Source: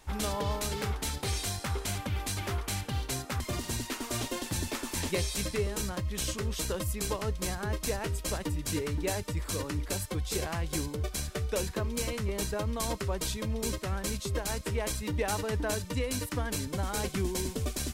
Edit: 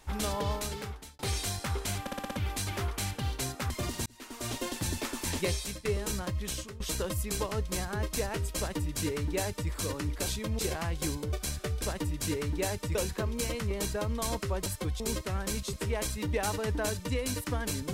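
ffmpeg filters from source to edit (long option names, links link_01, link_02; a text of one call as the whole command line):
ffmpeg -i in.wav -filter_complex "[0:a]asplit=17[link_01][link_02][link_03][link_04][link_05][link_06][link_07][link_08][link_09][link_10][link_11][link_12][link_13][link_14][link_15][link_16][link_17];[link_01]atrim=end=1.19,asetpts=PTS-STARTPTS,afade=type=out:start_time=0.5:duration=0.69[link_18];[link_02]atrim=start=1.19:end=2.072,asetpts=PTS-STARTPTS,afade=type=in:duration=0.004:curve=hsin[link_19];[link_03]atrim=start=2.008:end=2.072[link_20];[link_04]atrim=start=2.008:end=2.072[link_21];[link_05]atrim=start=2.008:end=2.072[link_22];[link_06]atrim=start=2.008:end=2.072[link_23];[link_07]atrim=start=2.008:end=3.76,asetpts=PTS-STARTPTS,afade=type=out:start_time=1.748:duration=0.004:curve=hsin[link_24];[link_08]atrim=start=3.76:end=5.55,asetpts=PTS-STARTPTS,afade=type=in:duration=0.56,afade=type=out:start_time=1.47:duration=0.32:silence=0.158489[link_25];[link_09]atrim=start=5.55:end=6.5,asetpts=PTS-STARTPTS,afade=type=in:duration=0.004:curve=hsin:silence=0.158489,afade=type=out:start_time=0.55:duration=0.4:silence=0.125893[link_26];[link_10]atrim=start=6.5:end=9.962,asetpts=PTS-STARTPTS,afade=type=in:duration=0.004:curve=hsin:silence=0.125893[link_27];[link_11]atrim=start=13.238:end=13.572[link_28];[link_12]atrim=start=10.298:end=11.532[link_29];[link_13]atrim=start=8.268:end=9.402[link_30];[link_14]atrim=start=11.528:end=13.242[link_31];[link_15]atrim=start=9.958:end=10.302[link_32];[link_16]atrim=start=13.568:end=14.302[link_33];[link_17]atrim=start=14.578[link_34];[link_18][link_19]concat=n=2:v=0:a=1[link_35];[link_35][link_20]acrossfade=duration=0.004:curve1=hsin:curve2=hsin[link_36];[link_36][link_21]acrossfade=duration=0.004:curve1=hsin:curve2=hsin[link_37];[link_37][link_22]acrossfade=duration=0.004:curve1=hsin:curve2=hsin[link_38];[link_38][link_23]acrossfade=duration=0.004:curve1=hsin:curve2=hsin[link_39];[link_24][link_25][link_26][link_27]concat=n=4:v=0:a=1[link_40];[link_39][link_40]acrossfade=duration=0.004:curve1=hsin:curve2=hsin[link_41];[link_41][link_28]acrossfade=duration=0.004:curve1=hsin:curve2=hsin[link_42];[link_42][link_29]acrossfade=duration=0.004:curve1=hsin:curve2=hsin[link_43];[link_43][link_30]acrossfade=duration=0.004:curve1=hsin:curve2=hsin[link_44];[link_44][link_31]acrossfade=duration=0.004:curve1=hsin:curve2=hsin[link_45];[link_45][link_32]acrossfade=duration=0.004:curve1=hsin:curve2=hsin[link_46];[link_46][link_33]acrossfade=duration=0.004:curve1=hsin:curve2=hsin[link_47];[link_47][link_34]acrossfade=duration=0.004:curve1=hsin:curve2=hsin" out.wav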